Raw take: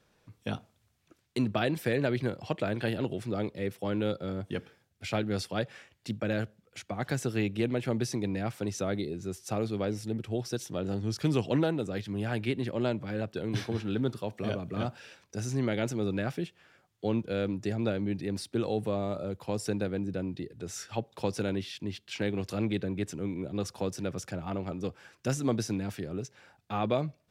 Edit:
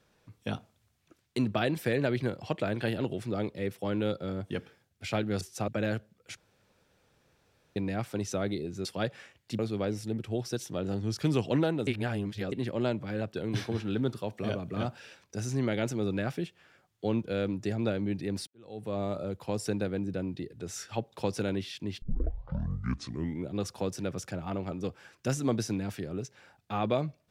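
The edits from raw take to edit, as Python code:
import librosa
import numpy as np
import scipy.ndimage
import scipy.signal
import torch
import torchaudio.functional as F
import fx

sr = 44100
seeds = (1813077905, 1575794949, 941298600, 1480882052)

y = fx.edit(x, sr, fx.swap(start_s=5.41, length_s=0.74, other_s=9.32, other_length_s=0.27),
    fx.room_tone_fill(start_s=6.84, length_s=1.39),
    fx.reverse_span(start_s=11.87, length_s=0.65),
    fx.fade_in_span(start_s=18.47, length_s=0.54, curve='qua'),
    fx.tape_start(start_s=22.02, length_s=1.45), tone=tone)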